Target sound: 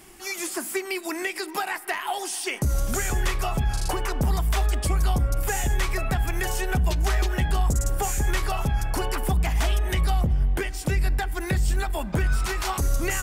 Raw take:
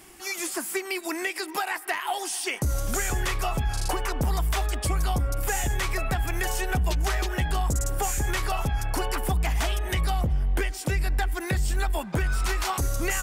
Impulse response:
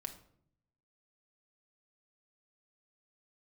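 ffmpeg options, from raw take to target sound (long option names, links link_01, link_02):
-filter_complex "[0:a]asplit=2[link_01][link_02];[1:a]atrim=start_sample=2205,lowshelf=frequency=480:gain=11[link_03];[link_02][link_03]afir=irnorm=-1:irlink=0,volume=-11dB[link_04];[link_01][link_04]amix=inputs=2:normalize=0,volume=-1.5dB"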